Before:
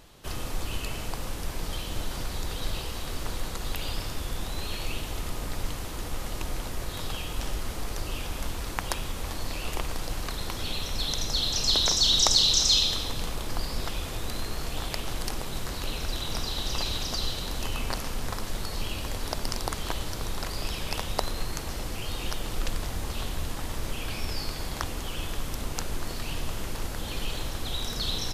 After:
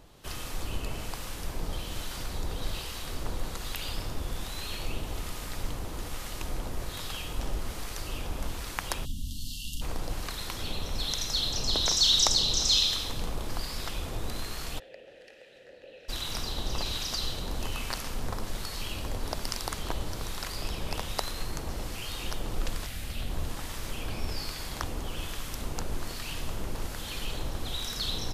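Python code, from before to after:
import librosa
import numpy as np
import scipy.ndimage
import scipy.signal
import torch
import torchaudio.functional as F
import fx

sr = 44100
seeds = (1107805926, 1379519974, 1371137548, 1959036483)

y = fx.spec_erase(x, sr, start_s=9.05, length_s=0.77, low_hz=300.0, high_hz=2700.0)
y = fx.graphic_eq_15(y, sr, hz=(400, 1000, 2500, 6300), db=(-7, -10, 3, -4), at=(22.86, 23.3))
y = fx.harmonic_tremolo(y, sr, hz=1.2, depth_pct=50, crossover_hz=1100.0)
y = fx.vowel_filter(y, sr, vowel='e', at=(14.78, 16.08), fade=0.02)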